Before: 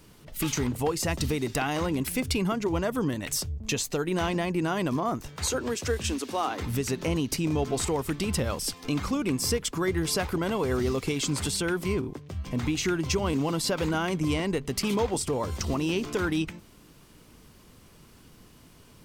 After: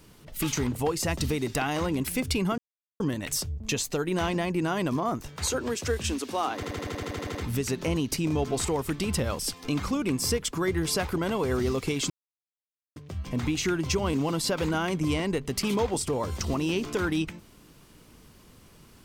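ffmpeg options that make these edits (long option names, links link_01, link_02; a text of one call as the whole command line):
ffmpeg -i in.wav -filter_complex "[0:a]asplit=15[link_01][link_02][link_03][link_04][link_05][link_06][link_07][link_08][link_09][link_10][link_11][link_12][link_13][link_14][link_15];[link_01]atrim=end=2.58,asetpts=PTS-STARTPTS,afade=type=out:start_time=2.576:duration=0.004:curve=hsin[link_16];[link_02]atrim=start=2.58:end=3,asetpts=PTS-STARTPTS,volume=0[link_17];[link_03]atrim=start=3:end=6.632,asetpts=PTS-STARTPTS,afade=type=in:duration=0.004:curve=hsin[link_18];[link_04]atrim=start=6.548:end=6.632[link_19];[link_05]atrim=start=6.548:end=6.632[link_20];[link_06]atrim=start=6.548:end=6.632[link_21];[link_07]atrim=start=6.548:end=6.632[link_22];[link_08]atrim=start=6.548:end=6.632[link_23];[link_09]atrim=start=6.548:end=6.632[link_24];[link_10]atrim=start=6.548:end=6.632[link_25];[link_11]atrim=start=6.548:end=6.632[link_26];[link_12]atrim=start=6.548:end=6.632[link_27];[link_13]atrim=start=6.548:end=11.3,asetpts=PTS-STARTPTS,afade=type=out:start_time=4.748:duration=0.004:curve=hsin[link_28];[link_14]atrim=start=11.3:end=12.16,asetpts=PTS-STARTPTS,volume=0[link_29];[link_15]atrim=start=12.16,asetpts=PTS-STARTPTS,afade=type=in:duration=0.004:curve=hsin[link_30];[link_16][link_17][link_18]concat=n=3:v=0:a=1[link_31];[link_31][link_19]acrossfade=duration=0.004:curve1=hsin:curve2=hsin[link_32];[link_32][link_20]acrossfade=duration=0.004:curve1=hsin:curve2=hsin[link_33];[link_33][link_21]acrossfade=duration=0.004:curve1=hsin:curve2=hsin[link_34];[link_34][link_22]acrossfade=duration=0.004:curve1=hsin:curve2=hsin[link_35];[link_35][link_23]acrossfade=duration=0.004:curve1=hsin:curve2=hsin[link_36];[link_36][link_24]acrossfade=duration=0.004:curve1=hsin:curve2=hsin[link_37];[link_37][link_25]acrossfade=duration=0.004:curve1=hsin:curve2=hsin[link_38];[link_38][link_26]acrossfade=duration=0.004:curve1=hsin:curve2=hsin[link_39];[link_39][link_27]acrossfade=duration=0.004:curve1=hsin:curve2=hsin[link_40];[link_28][link_29][link_30]concat=n=3:v=0:a=1[link_41];[link_40][link_41]acrossfade=duration=0.004:curve1=hsin:curve2=hsin" out.wav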